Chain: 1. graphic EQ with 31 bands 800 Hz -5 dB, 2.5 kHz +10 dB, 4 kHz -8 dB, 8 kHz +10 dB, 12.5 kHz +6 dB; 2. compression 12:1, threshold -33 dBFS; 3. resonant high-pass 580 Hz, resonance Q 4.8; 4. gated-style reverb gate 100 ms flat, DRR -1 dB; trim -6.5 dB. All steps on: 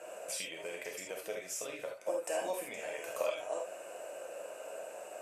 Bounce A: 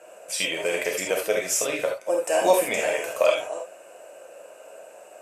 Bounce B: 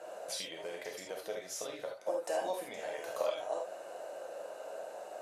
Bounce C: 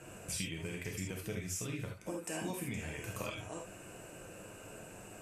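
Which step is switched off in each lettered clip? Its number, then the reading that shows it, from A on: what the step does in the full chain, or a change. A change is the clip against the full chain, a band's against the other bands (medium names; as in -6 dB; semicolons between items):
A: 2, mean gain reduction 8.5 dB; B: 1, 8 kHz band -4.0 dB; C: 3, 250 Hz band +11.0 dB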